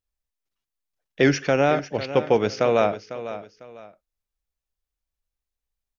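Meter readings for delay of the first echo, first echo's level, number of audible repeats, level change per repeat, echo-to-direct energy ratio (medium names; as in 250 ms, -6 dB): 500 ms, -13.0 dB, 2, -10.5 dB, -12.5 dB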